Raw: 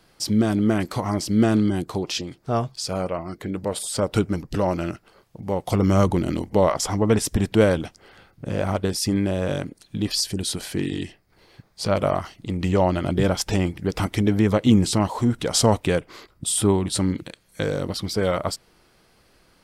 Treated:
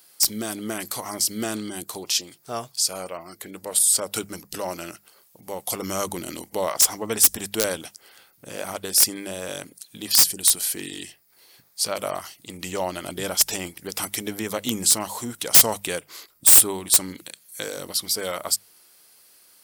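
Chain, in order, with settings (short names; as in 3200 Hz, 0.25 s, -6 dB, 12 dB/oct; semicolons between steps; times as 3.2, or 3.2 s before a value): RIAA curve recording; wrapped overs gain 5.5 dB; high shelf 7900 Hz +9.5 dB; notches 50/100/150/200 Hz; gain -5 dB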